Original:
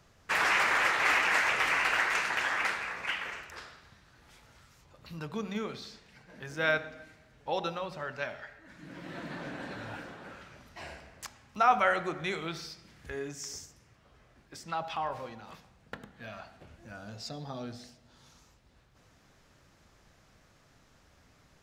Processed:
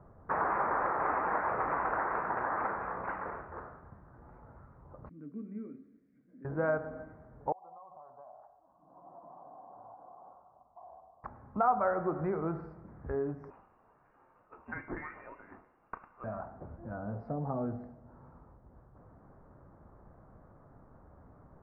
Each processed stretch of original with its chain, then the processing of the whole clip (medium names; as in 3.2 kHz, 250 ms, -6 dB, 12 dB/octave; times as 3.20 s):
5.09–6.45 s: vowel filter i + doubling 21 ms -12 dB
7.52–11.24 s: cascade formant filter a + compression 10:1, threshold -54 dBFS
13.50–16.24 s: doubling 35 ms -12.5 dB + frequency inversion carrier 2.9 kHz
whole clip: inverse Chebyshev low-pass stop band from 3 kHz, stop band 50 dB; compression 2:1, threshold -38 dBFS; trim +7 dB